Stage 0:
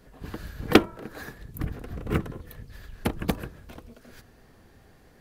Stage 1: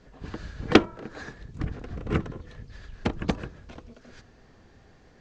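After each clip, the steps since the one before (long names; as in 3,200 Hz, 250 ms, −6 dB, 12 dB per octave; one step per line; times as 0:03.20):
Butterworth low-pass 7,200 Hz 48 dB per octave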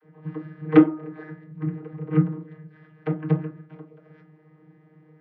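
channel vocoder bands 32, saw 155 Hz
high-frequency loss of the air 270 metres
convolution reverb RT60 0.35 s, pre-delay 3 ms, DRR 2.5 dB
level −1 dB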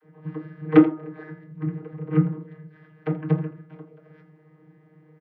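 single-tap delay 82 ms −15.5 dB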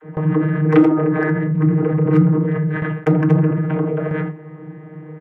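adaptive Wiener filter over 9 samples
noise gate with hold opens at −42 dBFS
envelope flattener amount 70%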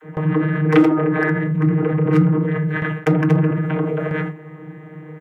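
high-shelf EQ 2,000 Hz +11 dB
level −1.5 dB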